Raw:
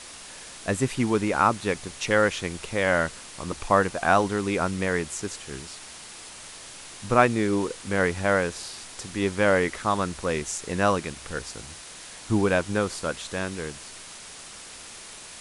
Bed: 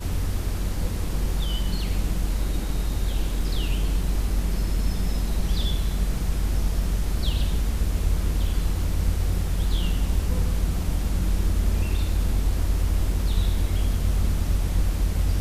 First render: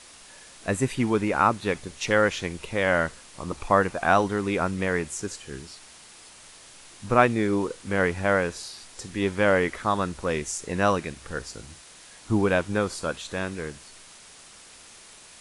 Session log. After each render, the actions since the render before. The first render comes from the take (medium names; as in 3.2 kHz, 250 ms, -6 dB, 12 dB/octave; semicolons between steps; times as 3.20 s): noise print and reduce 6 dB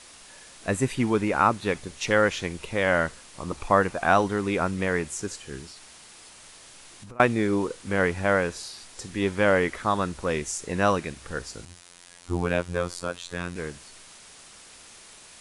5.69–7.20 s: compression 12:1, threshold -40 dBFS; 11.65–13.56 s: robot voice 87.7 Hz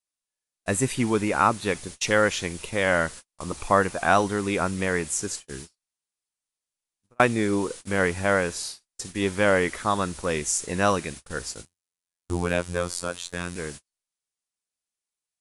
gate -39 dBFS, range -47 dB; treble shelf 5.7 kHz +10.5 dB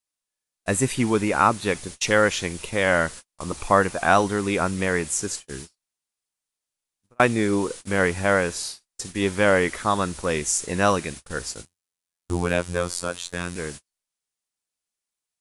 trim +2 dB; peak limiter -3 dBFS, peak gain reduction 1.5 dB